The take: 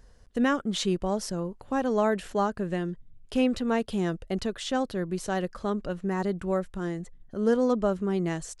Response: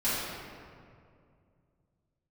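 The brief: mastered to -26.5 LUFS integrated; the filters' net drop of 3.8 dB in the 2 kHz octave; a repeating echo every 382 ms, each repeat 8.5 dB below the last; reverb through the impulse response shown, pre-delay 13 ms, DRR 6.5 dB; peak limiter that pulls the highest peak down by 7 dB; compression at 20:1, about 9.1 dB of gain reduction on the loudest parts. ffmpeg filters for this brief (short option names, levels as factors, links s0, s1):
-filter_complex "[0:a]equalizer=f=2000:t=o:g=-5,acompressor=threshold=0.0398:ratio=20,alimiter=level_in=1.26:limit=0.0631:level=0:latency=1,volume=0.794,aecho=1:1:382|764|1146|1528:0.376|0.143|0.0543|0.0206,asplit=2[s0][s1];[1:a]atrim=start_sample=2205,adelay=13[s2];[s1][s2]afir=irnorm=-1:irlink=0,volume=0.133[s3];[s0][s3]amix=inputs=2:normalize=0,volume=2.51"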